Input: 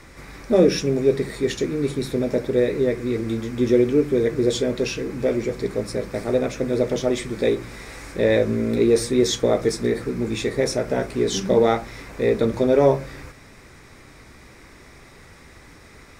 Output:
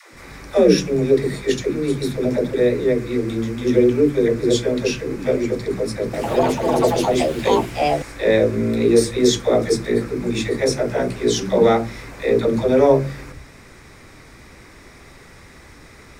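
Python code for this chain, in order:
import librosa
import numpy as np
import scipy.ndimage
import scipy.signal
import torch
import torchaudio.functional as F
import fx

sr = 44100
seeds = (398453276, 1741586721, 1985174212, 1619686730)

y = fx.dispersion(x, sr, late='lows', ms=140.0, hz=300.0)
y = fx.echo_pitch(y, sr, ms=103, semitones=5, count=2, db_per_echo=-3.0, at=(6.03, 8.55))
y = y * librosa.db_to_amplitude(2.5)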